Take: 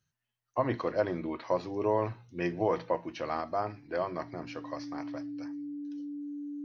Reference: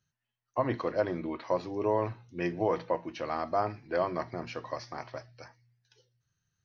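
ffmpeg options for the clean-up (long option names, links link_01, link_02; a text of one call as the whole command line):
ffmpeg -i in.wav -af "bandreject=frequency=290:width=30,asetnsamples=nb_out_samples=441:pad=0,asendcmd='3.41 volume volume 3dB',volume=0dB" out.wav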